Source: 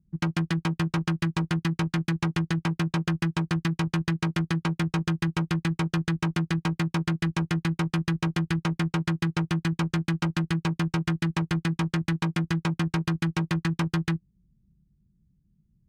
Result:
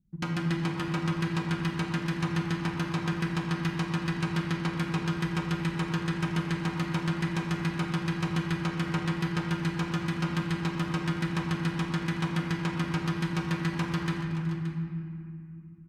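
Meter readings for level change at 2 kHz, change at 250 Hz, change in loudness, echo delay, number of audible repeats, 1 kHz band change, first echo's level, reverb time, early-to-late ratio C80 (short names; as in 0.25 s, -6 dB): -1.5 dB, -3.0 dB, -3.0 dB, 0.372 s, 3, -1.0 dB, -16.5 dB, 2.5 s, 2.5 dB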